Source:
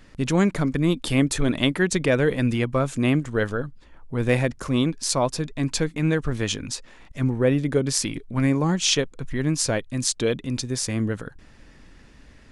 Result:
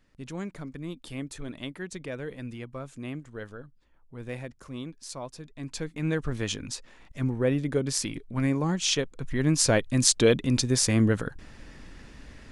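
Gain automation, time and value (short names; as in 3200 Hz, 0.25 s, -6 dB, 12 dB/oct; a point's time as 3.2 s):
5.43 s -16 dB
6.17 s -5 dB
8.97 s -5 dB
9.86 s +3 dB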